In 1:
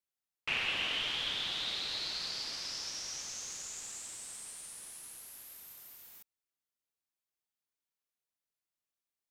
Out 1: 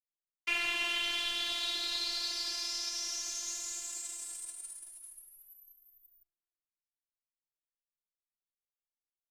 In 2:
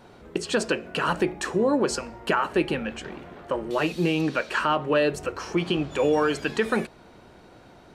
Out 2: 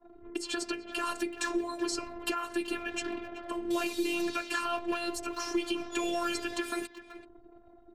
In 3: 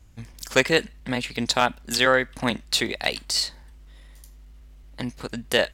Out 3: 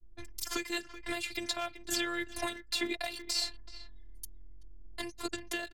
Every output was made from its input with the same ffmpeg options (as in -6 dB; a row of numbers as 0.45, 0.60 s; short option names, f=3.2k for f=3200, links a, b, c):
-filter_complex "[0:a]anlmdn=0.0398,highshelf=f=4.4k:g=3.5,aecho=1:1:5.3:0.66,adynamicequalizer=threshold=0.0112:dfrequency=100:dqfactor=1.3:tfrequency=100:tqfactor=1.3:attack=5:release=100:ratio=0.375:range=1.5:mode=boostabove:tftype=bell,acrossover=split=210|2700|5600[a][b][c][d];[a]acompressor=threshold=-38dB:ratio=4[e];[b]acompressor=threshold=-27dB:ratio=4[f];[c]acompressor=threshold=-37dB:ratio=4[g];[d]acompressor=threshold=-45dB:ratio=4[h];[e][f][g][h]amix=inputs=4:normalize=0,alimiter=limit=-20dB:level=0:latency=1:release=496,asplit=2[i][j];[j]adelay=380,highpass=300,lowpass=3.4k,asoftclip=type=hard:threshold=-28dB,volume=-12dB[k];[i][k]amix=inputs=2:normalize=0,afreqshift=-30,crystalizer=i=1:c=0,afftfilt=real='hypot(re,im)*cos(PI*b)':imag='0':win_size=512:overlap=0.75,volume=2dB"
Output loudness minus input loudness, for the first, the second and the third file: +2.5, -8.0, -12.0 LU